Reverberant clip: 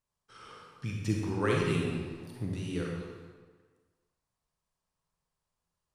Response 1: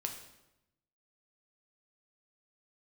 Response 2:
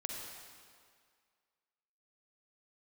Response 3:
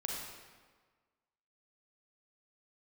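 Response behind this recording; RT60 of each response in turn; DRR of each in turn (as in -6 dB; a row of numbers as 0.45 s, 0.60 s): 3; 0.90 s, 2.0 s, 1.5 s; 3.0 dB, 0.0 dB, -2.0 dB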